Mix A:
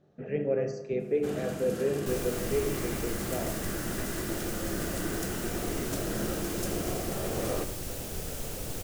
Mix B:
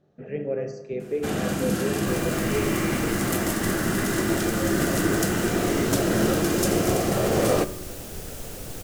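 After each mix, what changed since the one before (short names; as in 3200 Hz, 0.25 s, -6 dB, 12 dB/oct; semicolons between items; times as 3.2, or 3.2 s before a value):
first sound +11.5 dB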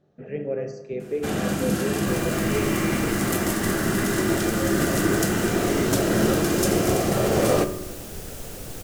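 first sound: send +6.5 dB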